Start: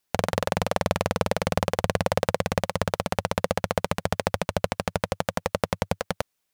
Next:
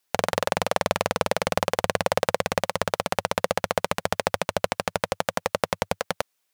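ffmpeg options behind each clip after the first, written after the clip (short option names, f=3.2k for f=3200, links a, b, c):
-af "lowshelf=f=240:g=-11.5,volume=3dB"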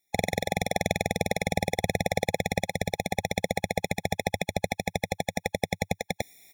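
-af "aecho=1:1:0.9:0.5,areverse,acompressor=mode=upward:threshold=-32dB:ratio=2.5,areverse,afftfilt=real='re*eq(mod(floor(b*sr/1024/840),2),0)':imag='im*eq(mod(floor(b*sr/1024/840),2),0)':win_size=1024:overlap=0.75"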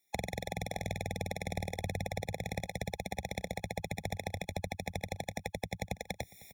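-filter_complex "[0:a]acrossover=split=130[a][b];[a]flanger=delay=15.5:depth=6.8:speed=0.32[c];[b]acompressor=threshold=-35dB:ratio=5[d];[c][d]amix=inputs=2:normalize=0,aecho=1:1:595:0.0944"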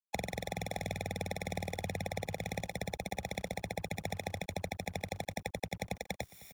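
-filter_complex "[0:a]acrossover=split=110|3700[a][b][c];[a]alimiter=level_in=19.5dB:limit=-24dB:level=0:latency=1:release=12,volume=-19.5dB[d];[d][b][c]amix=inputs=3:normalize=0,acrusher=bits=8:mix=0:aa=0.5"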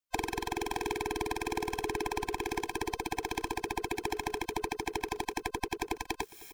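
-af "afftfilt=real='real(if(between(b,1,1008),(2*floor((b-1)/24)+1)*24-b,b),0)':imag='imag(if(between(b,1,1008),(2*floor((b-1)/24)+1)*24-b,b),0)*if(between(b,1,1008),-1,1)':win_size=2048:overlap=0.75,volume=4dB"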